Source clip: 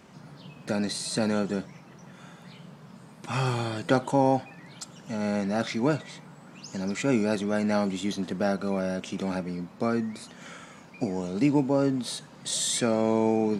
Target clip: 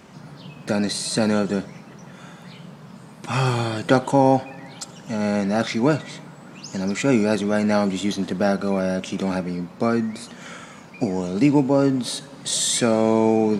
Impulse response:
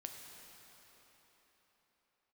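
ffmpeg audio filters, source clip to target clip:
-filter_complex "[0:a]asplit=2[s0][s1];[1:a]atrim=start_sample=2205,asetrate=61740,aresample=44100,adelay=75[s2];[s1][s2]afir=irnorm=-1:irlink=0,volume=0.178[s3];[s0][s3]amix=inputs=2:normalize=0,volume=2"

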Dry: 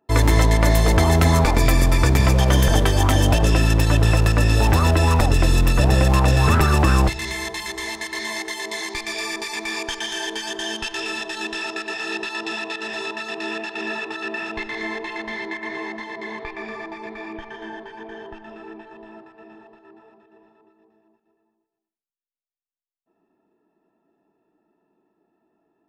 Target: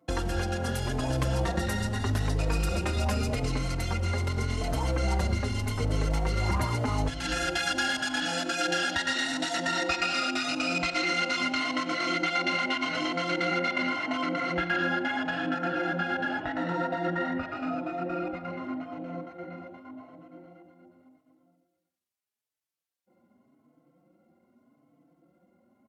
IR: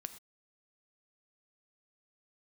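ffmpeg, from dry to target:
-filter_complex "[0:a]acompressor=threshold=0.0355:ratio=6,highpass=f=68:w=0.5412,highpass=f=68:w=1.3066,asplit=2[s0][s1];[1:a]atrim=start_sample=2205[s2];[s1][s2]afir=irnorm=-1:irlink=0,volume=2[s3];[s0][s3]amix=inputs=2:normalize=0,asetrate=35002,aresample=44100,atempo=1.25992,asplit=2[s4][s5];[s5]adelay=4.1,afreqshift=0.84[s6];[s4][s6]amix=inputs=2:normalize=1"

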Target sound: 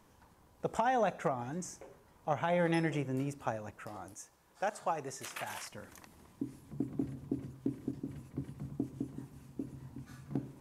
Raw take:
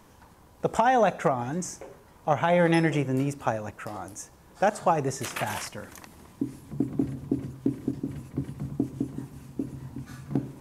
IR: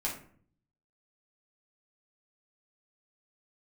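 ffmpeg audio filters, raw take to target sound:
-filter_complex "[0:a]asettb=1/sr,asplit=3[s0][s1][s2];[s0]atrim=end=4.144[s3];[s1]atrim=start=4.14:end=5.72,asetpts=PTS-STARTPTS,afade=t=in:d=0.004:c=qsin,afade=t=out:st=1.576:d=0.004:c=qsin,lowshelf=f=380:g=-10[s4];[s2]atrim=start=5.716[s5];[s3][s4]acrossfade=d=0.004:c1=hsin:c2=qsin[s6];[s6][s5]acrossfade=d=0.004:c1=qsin:c2=hsin,volume=0.355"

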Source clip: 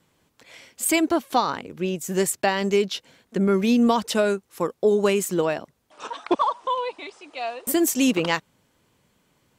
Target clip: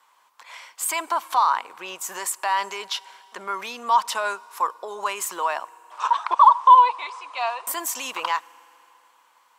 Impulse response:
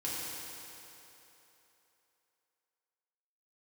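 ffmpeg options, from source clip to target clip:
-filter_complex "[0:a]alimiter=limit=0.119:level=0:latency=1:release=64,highpass=f=1000:t=q:w=5.1,asplit=2[s0][s1];[1:a]atrim=start_sample=2205,adelay=8[s2];[s1][s2]afir=irnorm=-1:irlink=0,volume=0.0501[s3];[s0][s3]amix=inputs=2:normalize=0,volume=1.33"

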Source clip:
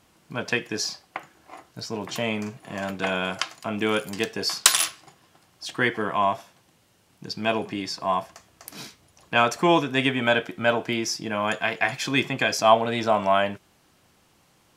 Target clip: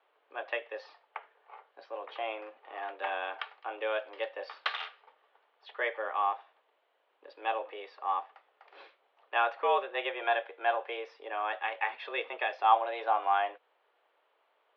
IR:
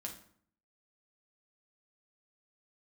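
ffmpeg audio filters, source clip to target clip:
-af "highpass=f=400:t=q:w=0.5412,highpass=f=400:t=q:w=1.307,lowpass=f=3600:t=q:w=0.5176,lowpass=f=3600:t=q:w=0.7071,lowpass=f=3600:t=q:w=1.932,afreqshift=110,aemphasis=mode=reproduction:type=riaa,volume=0.447"

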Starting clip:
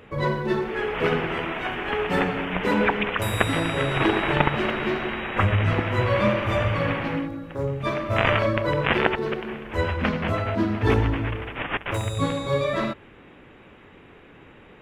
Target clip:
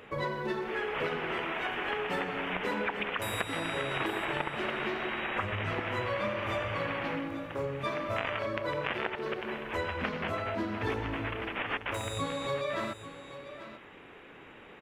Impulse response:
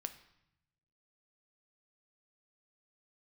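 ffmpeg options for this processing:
-af "lowshelf=f=240:g=-11,acompressor=threshold=0.0282:ratio=4,aecho=1:1:842:0.224"

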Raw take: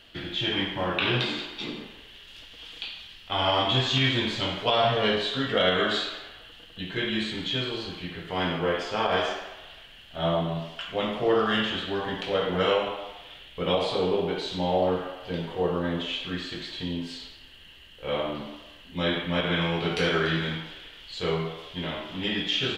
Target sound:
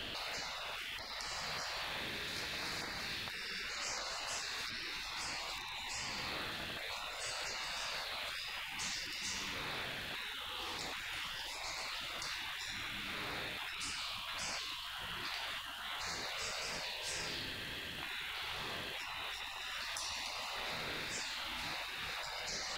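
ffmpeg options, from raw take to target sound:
-filter_complex "[0:a]acrossover=split=86|4900[s0][s1][s2];[s0]acompressor=threshold=0.00141:ratio=4[s3];[s1]acompressor=threshold=0.0126:ratio=4[s4];[s2]acompressor=threshold=0.00355:ratio=4[s5];[s3][s4][s5]amix=inputs=3:normalize=0,afftfilt=real='re*lt(hypot(re,im),0.00891)':imag='im*lt(hypot(re,im),0.00891)':win_size=1024:overlap=0.75,aeval=exprs='val(0)+0.000126*(sin(2*PI*50*n/s)+sin(2*PI*2*50*n/s)/2+sin(2*PI*3*50*n/s)/3+sin(2*PI*4*50*n/s)/4+sin(2*PI*5*50*n/s)/5)':c=same,volume=3.76"

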